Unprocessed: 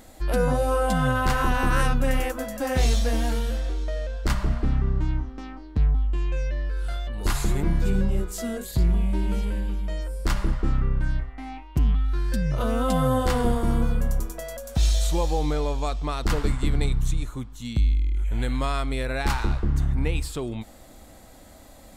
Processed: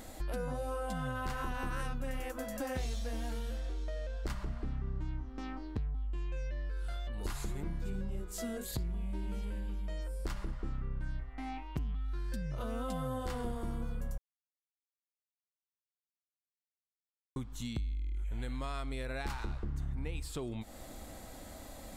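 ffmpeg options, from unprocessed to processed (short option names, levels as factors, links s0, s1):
-filter_complex "[0:a]asplit=3[s0][s1][s2];[s0]atrim=end=14.18,asetpts=PTS-STARTPTS,afade=t=out:st=14.176:d=0.004:c=hsin[s3];[s1]atrim=start=14.18:end=17.36,asetpts=PTS-STARTPTS,volume=0[s4];[s2]atrim=start=17.36,asetpts=PTS-STARTPTS,afade=t=in:d=0.004:c=hsin[s5];[s3][s4][s5]concat=n=3:v=0:a=1,acompressor=threshold=0.0141:ratio=4"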